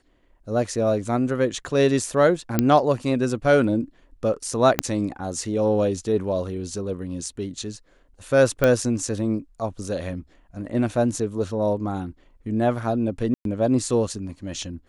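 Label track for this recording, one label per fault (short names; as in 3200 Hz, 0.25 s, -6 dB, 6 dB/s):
2.590000	2.590000	pop -5 dBFS
4.790000	4.790000	pop -3 dBFS
8.640000	8.640000	pop -7 dBFS
13.340000	13.450000	gap 0.112 s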